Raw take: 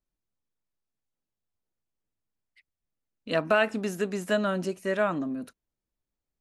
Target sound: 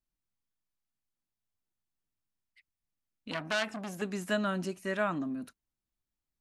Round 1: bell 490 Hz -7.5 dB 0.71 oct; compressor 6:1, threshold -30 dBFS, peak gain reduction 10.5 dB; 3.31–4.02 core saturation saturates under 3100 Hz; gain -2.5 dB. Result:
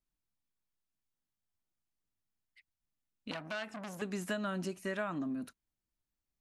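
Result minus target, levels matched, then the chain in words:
compressor: peak gain reduction +10.5 dB
bell 490 Hz -7.5 dB 0.71 oct; 3.31–4.02 core saturation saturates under 3100 Hz; gain -2.5 dB

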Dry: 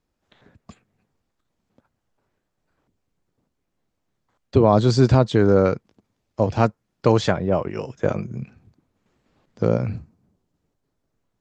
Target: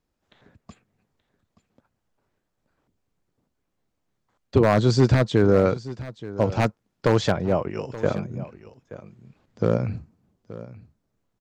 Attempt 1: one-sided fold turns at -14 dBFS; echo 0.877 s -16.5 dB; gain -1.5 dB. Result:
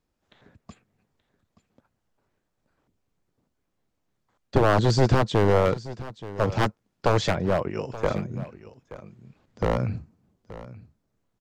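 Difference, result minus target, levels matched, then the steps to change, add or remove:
one-sided fold: distortion +13 dB
change: one-sided fold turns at -7 dBFS

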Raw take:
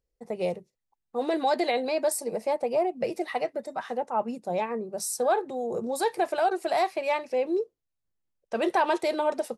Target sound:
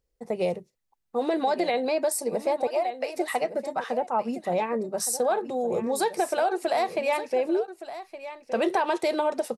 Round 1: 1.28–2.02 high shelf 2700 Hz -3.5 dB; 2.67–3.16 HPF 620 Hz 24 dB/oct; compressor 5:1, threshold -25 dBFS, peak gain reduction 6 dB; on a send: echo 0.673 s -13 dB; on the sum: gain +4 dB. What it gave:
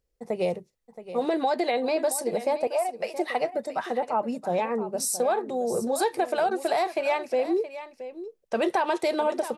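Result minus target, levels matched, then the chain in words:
echo 0.494 s early
1.28–2.02 high shelf 2700 Hz -3.5 dB; 2.67–3.16 HPF 620 Hz 24 dB/oct; compressor 5:1, threshold -25 dBFS, peak gain reduction 6 dB; on a send: echo 1.167 s -13 dB; on the sum: gain +4 dB

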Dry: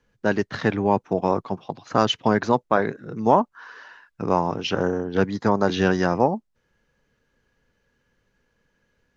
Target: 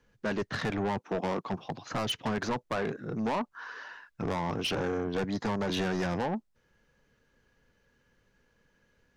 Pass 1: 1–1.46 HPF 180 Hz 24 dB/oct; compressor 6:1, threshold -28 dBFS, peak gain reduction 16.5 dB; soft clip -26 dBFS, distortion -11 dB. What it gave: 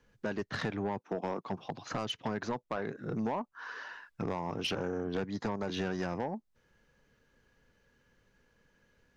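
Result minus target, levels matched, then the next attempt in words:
compressor: peak gain reduction +9 dB
1–1.46 HPF 180 Hz 24 dB/oct; compressor 6:1, threshold -17 dBFS, peak gain reduction 7 dB; soft clip -26 dBFS, distortion -5 dB

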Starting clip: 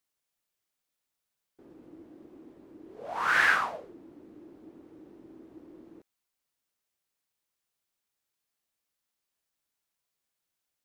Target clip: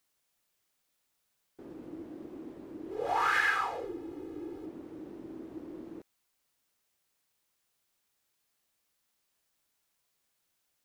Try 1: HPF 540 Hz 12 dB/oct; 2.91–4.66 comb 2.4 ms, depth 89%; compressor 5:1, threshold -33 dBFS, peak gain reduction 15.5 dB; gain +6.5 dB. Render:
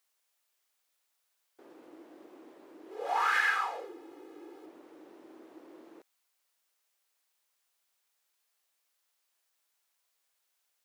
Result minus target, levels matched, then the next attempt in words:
500 Hz band -8.5 dB
2.91–4.66 comb 2.4 ms, depth 89%; compressor 5:1, threshold -33 dBFS, peak gain reduction 16 dB; gain +6.5 dB

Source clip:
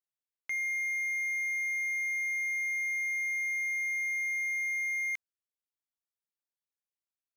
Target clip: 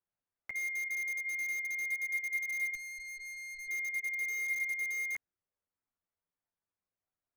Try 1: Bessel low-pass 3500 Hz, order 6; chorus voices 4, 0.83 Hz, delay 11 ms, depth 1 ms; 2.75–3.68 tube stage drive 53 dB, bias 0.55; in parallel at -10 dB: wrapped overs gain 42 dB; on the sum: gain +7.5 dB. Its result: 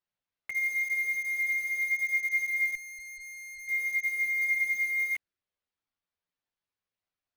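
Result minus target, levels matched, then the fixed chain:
4000 Hz band -5.0 dB
Bessel low-pass 1400 Hz, order 6; chorus voices 4, 0.83 Hz, delay 11 ms, depth 1 ms; 2.75–3.68 tube stage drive 53 dB, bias 0.55; in parallel at -10 dB: wrapped overs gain 42 dB; on the sum: gain +7.5 dB

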